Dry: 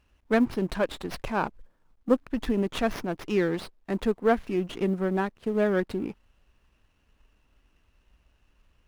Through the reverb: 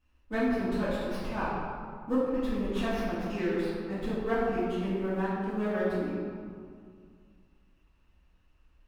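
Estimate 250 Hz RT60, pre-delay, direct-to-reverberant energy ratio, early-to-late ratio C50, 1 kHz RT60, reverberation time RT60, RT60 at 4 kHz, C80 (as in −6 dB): 2.5 s, 3 ms, −13.0 dB, −2.0 dB, 2.2 s, 2.1 s, 1.2 s, 0.0 dB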